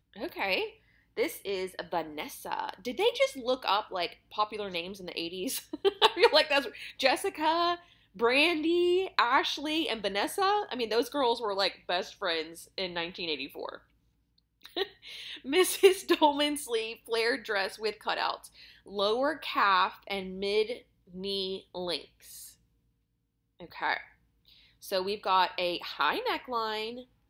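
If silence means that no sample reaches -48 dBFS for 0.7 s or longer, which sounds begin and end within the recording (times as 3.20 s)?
14.62–22.52 s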